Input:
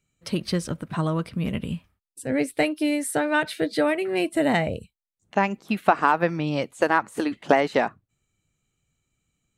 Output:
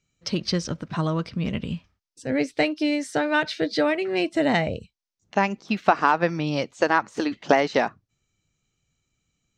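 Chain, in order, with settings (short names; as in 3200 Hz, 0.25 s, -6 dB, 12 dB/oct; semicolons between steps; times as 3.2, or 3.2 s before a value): resonant high shelf 8000 Hz -13.5 dB, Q 3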